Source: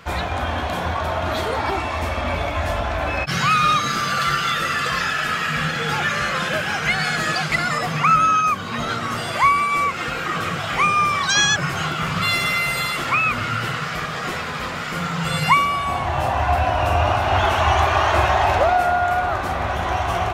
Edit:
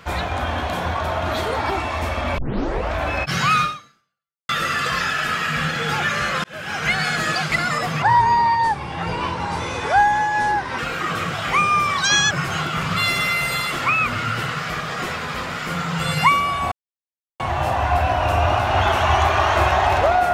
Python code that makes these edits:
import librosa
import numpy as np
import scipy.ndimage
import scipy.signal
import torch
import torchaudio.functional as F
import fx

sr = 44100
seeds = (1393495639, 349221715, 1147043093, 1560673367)

y = fx.edit(x, sr, fx.tape_start(start_s=2.38, length_s=0.57),
    fx.fade_out_span(start_s=3.61, length_s=0.88, curve='exp'),
    fx.fade_in_span(start_s=6.44, length_s=0.42),
    fx.speed_span(start_s=8.02, length_s=2.02, speed=0.73),
    fx.insert_silence(at_s=15.97, length_s=0.68), tone=tone)